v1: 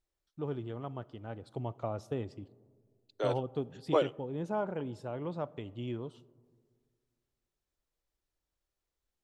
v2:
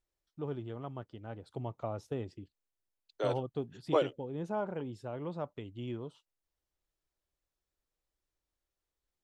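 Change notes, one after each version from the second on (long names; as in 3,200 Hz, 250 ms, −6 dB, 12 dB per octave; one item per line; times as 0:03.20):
reverb: off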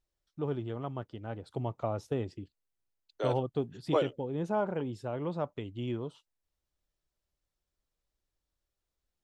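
first voice +4.5 dB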